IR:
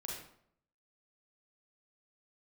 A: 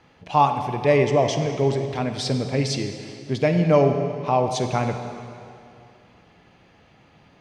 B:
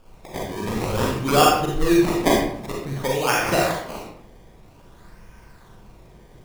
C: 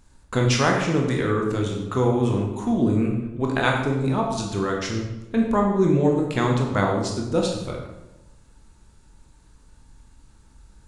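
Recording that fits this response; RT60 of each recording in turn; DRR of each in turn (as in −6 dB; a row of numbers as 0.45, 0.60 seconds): B; 2.6, 0.65, 1.0 seconds; 6.0, −3.0, −0.5 decibels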